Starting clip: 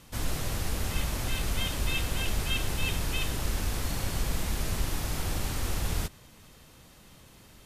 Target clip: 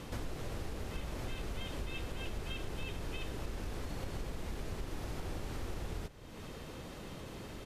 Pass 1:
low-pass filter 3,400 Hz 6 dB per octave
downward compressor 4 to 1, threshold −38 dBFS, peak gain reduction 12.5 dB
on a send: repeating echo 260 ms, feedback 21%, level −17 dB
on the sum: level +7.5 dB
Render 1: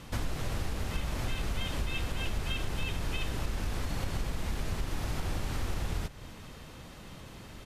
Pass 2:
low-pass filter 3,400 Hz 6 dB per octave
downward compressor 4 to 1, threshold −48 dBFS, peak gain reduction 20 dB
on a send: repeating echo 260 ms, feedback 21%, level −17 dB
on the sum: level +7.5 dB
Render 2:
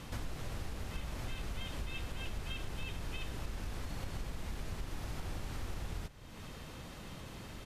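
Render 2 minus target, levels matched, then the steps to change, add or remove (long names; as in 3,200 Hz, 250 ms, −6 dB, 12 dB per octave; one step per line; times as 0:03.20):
500 Hz band −4.0 dB
add after low-pass filter: parametric band 410 Hz +6.5 dB 1.3 octaves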